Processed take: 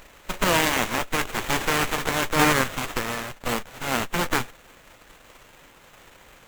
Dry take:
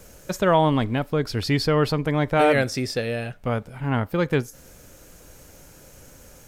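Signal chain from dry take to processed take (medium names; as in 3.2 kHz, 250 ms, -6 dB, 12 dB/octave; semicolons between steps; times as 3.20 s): formants flattened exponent 0.1; sliding maximum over 9 samples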